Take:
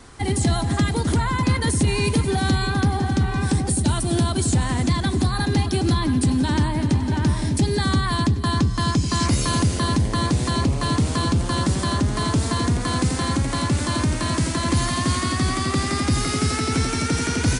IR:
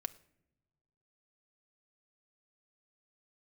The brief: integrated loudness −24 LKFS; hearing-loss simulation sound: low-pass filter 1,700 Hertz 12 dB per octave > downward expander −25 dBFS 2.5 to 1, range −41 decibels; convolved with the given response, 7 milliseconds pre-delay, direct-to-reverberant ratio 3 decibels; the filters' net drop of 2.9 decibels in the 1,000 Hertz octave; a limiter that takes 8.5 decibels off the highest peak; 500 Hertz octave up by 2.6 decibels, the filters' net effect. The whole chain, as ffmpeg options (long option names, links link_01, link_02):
-filter_complex "[0:a]equalizer=frequency=500:width_type=o:gain=4.5,equalizer=frequency=1000:width_type=o:gain=-4,alimiter=limit=-17dB:level=0:latency=1,asplit=2[link_01][link_02];[1:a]atrim=start_sample=2205,adelay=7[link_03];[link_02][link_03]afir=irnorm=-1:irlink=0,volume=-1.5dB[link_04];[link_01][link_04]amix=inputs=2:normalize=0,lowpass=1700,agate=range=-41dB:threshold=-25dB:ratio=2.5,volume=0.5dB"